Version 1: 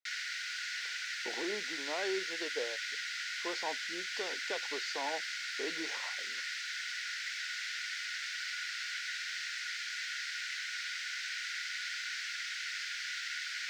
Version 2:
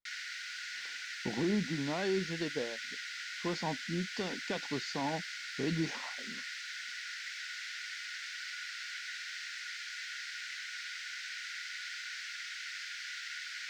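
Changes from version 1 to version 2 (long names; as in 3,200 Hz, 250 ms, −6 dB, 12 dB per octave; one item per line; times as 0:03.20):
background −3.5 dB
master: remove Chebyshev high-pass filter 420 Hz, order 3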